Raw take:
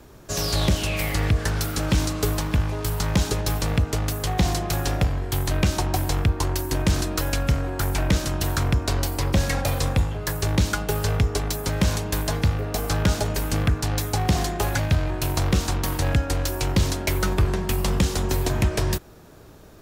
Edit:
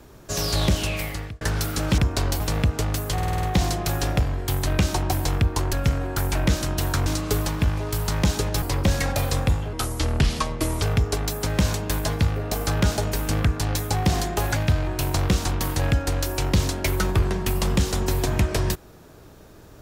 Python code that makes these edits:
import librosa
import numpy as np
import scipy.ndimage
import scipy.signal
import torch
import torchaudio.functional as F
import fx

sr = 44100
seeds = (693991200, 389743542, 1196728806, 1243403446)

y = fx.edit(x, sr, fx.fade_out_span(start_s=0.85, length_s=0.56),
    fx.swap(start_s=1.98, length_s=1.56, other_s=8.69, other_length_s=0.42),
    fx.stutter(start_s=4.27, slice_s=0.05, count=7),
    fx.cut(start_s=6.57, length_s=0.79),
    fx.speed_span(start_s=10.22, length_s=0.83, speed=0.76), tone=tone)